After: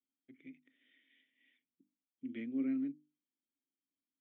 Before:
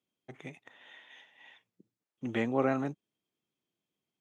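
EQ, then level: vowel filter i; treble shelf 2.5 kHz -9 dB; hum notches 50/100/150/200/250/300 Hz; 0.0 dB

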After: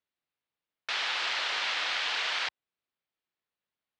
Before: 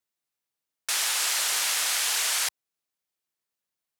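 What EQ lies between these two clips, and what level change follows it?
low-pass 3.9 kHz 24 dB/octave; 0.0 dB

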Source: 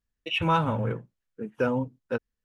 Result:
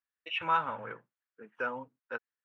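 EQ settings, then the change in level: band-pass filter 1.5 kHz, Q 1.4; 0.0 dB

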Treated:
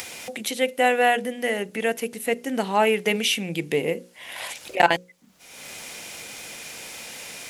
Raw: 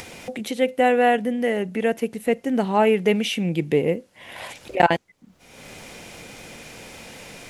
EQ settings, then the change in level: tilt EQ +2.5 dB/octave; hum notches 60/120/180/240/300/360/420/480/540 Hz; 0.0 dB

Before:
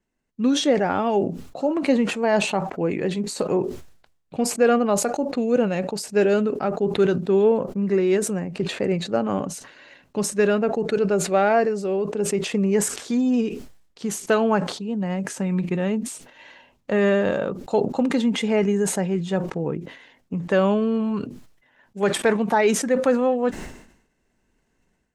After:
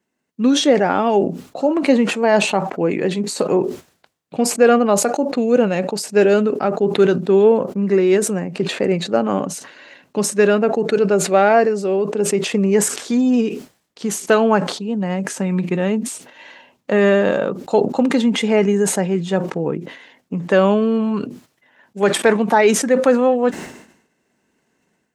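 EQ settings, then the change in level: high-pass 160 Hz 12 dB/octave; +5.5 dB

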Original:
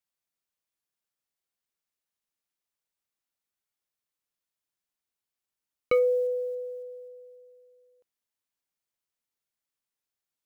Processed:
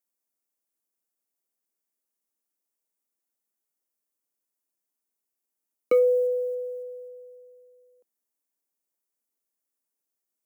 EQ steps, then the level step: steep high-pass 210 Hz; peaking EQ 1.5 kHz -8.5 dB 2.6 oct; peaking EQ 3.6 kHz -10.5 dB 1.2 oct; +6.5 dB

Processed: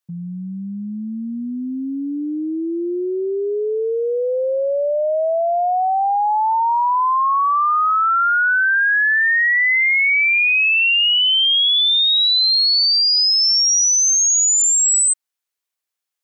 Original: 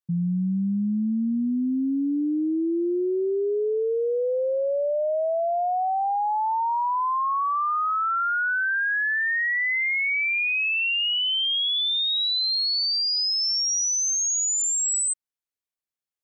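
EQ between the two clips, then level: peaking EQ 160 Hz -5 dB 1.4 oct; bass shelf 380 Hz -10.5 dB; +9.0 dB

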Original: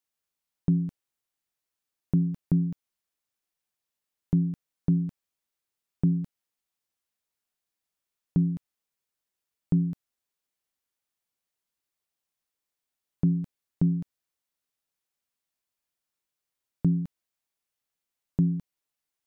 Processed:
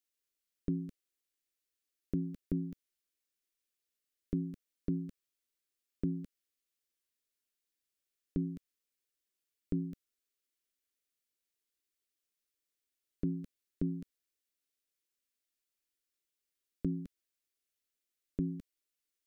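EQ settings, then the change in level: static phaser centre 350 Hz, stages 4; -1.5 dB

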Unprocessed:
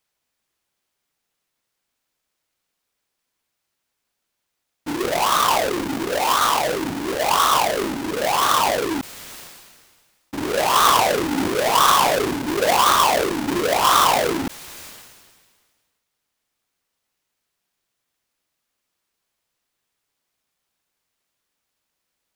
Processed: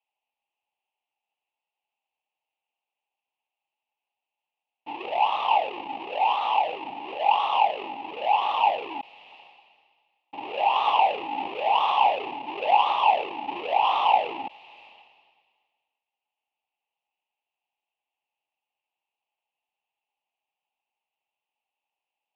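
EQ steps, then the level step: two resonant band-passes 1.5 kHz, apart 1.7 oct; distance through air 360 m; +6.0 dB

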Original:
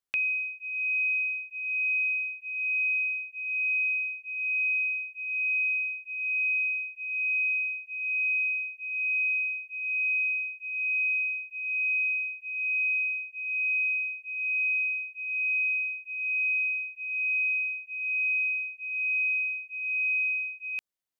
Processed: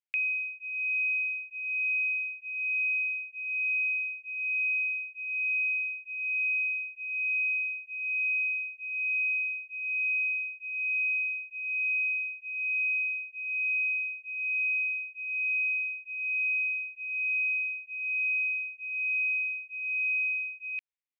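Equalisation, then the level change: band-pass filter 2.3 kHz, Q 3.5; 0.0 dB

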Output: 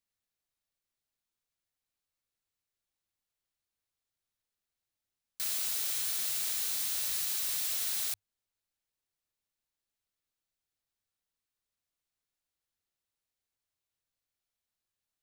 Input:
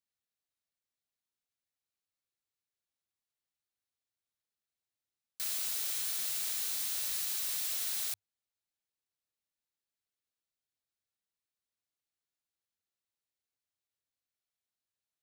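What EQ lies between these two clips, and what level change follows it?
bass shelf 61 Hz +11.5 dB; +2.0 dB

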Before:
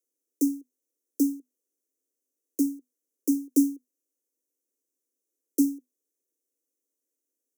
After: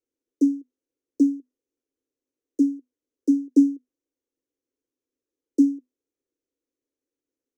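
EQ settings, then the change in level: distance through air 140 m; bass shelf 320 Hz +9.5 dB; 0.0 dB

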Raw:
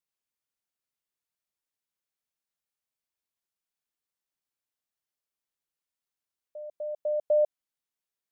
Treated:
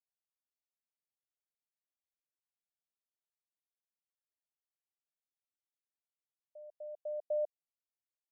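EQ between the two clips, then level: high-pass 560 Hz 24 dB/octave; steep low-pass 800 Hz 36 dB/octave; -8.5 dB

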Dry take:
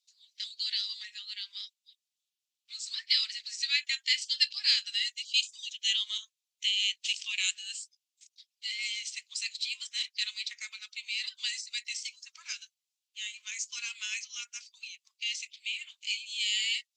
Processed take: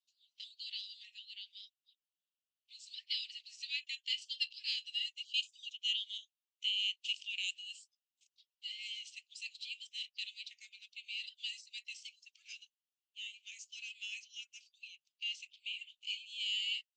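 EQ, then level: ladder high-pass 2.6 kHz, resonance 70%; -6.0 dB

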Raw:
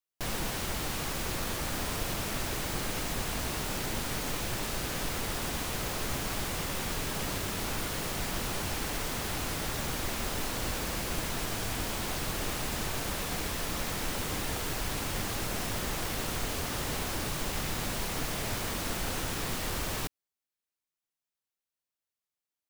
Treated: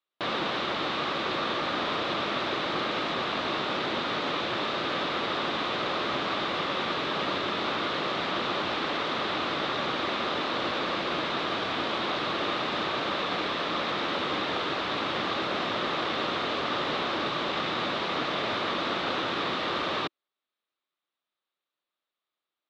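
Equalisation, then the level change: cabinet simulation 230–3800 Hz, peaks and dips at 340 Hz +4 dB, 580 Hz +4 dB, 1.2 kHz +8 dB, 3.7 kHz +8 dB; +5.0 dB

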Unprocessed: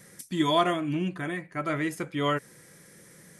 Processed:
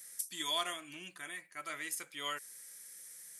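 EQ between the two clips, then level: differentiator; +3.5 dB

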